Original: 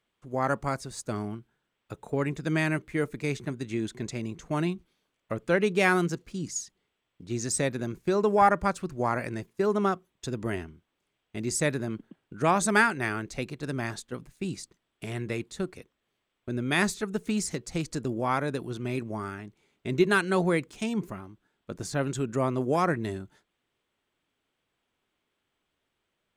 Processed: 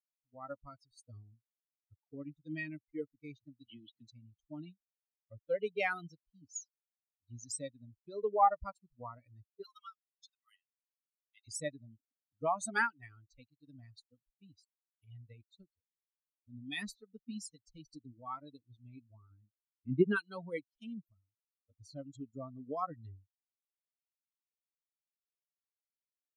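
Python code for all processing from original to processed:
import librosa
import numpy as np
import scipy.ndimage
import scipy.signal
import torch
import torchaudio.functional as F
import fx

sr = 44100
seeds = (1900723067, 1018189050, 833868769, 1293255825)

y = fx.chain(x, sr, fx.cheby1_bandpass(low_hz=120.0, high_hz=4100.0, order=4),
    fx.peak_eq(hz=3000.0, db=14.0, octaves=0.28),
    fx.band_squash(depth_pct=40), at=(3.65, 4.08))
y = fx.chain(y, sr, fx.highpass(hz=1100.0, slope=24),
    fx.high_shelf(hz=3100.0, db=7.0),
    fx.band_squash(depth_pct=70), at=(9.63, 11.48))
y = fx.chain(y, sr, fx.lowpass(hz=3000.0, slope=24),
    fx.peak_eq(hz=200.0, db=6.0, octaves=1.8), at=(19.3, 20.16))
y = fx.bin_expand(y, sr, power=3.0)
y = scipy.signal.sosfilt(scipy.signal.butter(2, 9400.0, 'lowpass', fs=sr, output='sos'), y)
y = fx.peak_eq(y, sr, hz=700.0, db=3.5, octaves=0.77)
y = y * librosa.db_to_amplitude(-5.5)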